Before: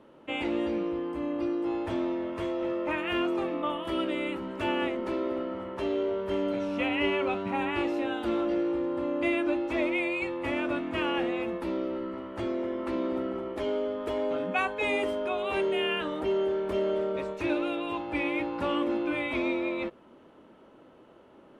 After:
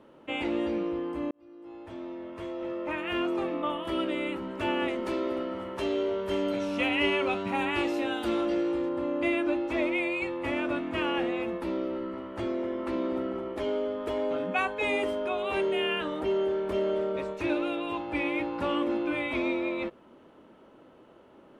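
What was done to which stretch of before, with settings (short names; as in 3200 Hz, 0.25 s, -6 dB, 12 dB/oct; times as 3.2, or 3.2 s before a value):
1.31–3.46 fade in
4.88–8.89 high shelf 3400 Hz +9.5 dB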